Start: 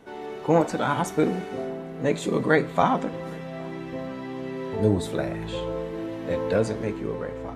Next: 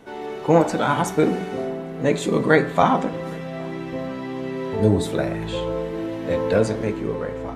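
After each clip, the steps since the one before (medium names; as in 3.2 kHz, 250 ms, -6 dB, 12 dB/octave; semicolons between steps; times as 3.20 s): de-hum 60.76 Hz, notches 32; trim +4.5 dB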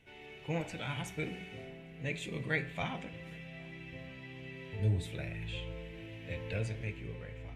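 FFT filter 120 Hz 0 dB, 230 Hz -15 dB, 700 Hz -15 dB, 1.2 kHz -19 dB, 2.5 kHz +5 dB, 4.2 kHz -9 dB; trim -7.5 dB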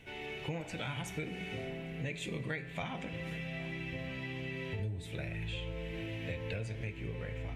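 compression 8:1, threshold -44 dBFS, peak gain reduction 18 dB; trim +8.5 dB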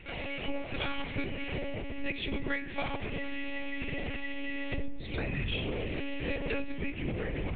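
monotone LPC vocoder at 8 kHz 280 Hz; trim +6 dB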